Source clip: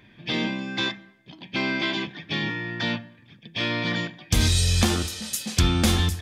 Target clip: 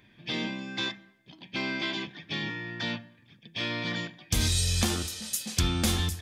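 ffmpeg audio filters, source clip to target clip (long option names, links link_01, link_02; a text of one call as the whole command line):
ffmpeg -i in.wav -af "highshelf=frequency=4900:gain=6,volume=-6.5dB" out.wav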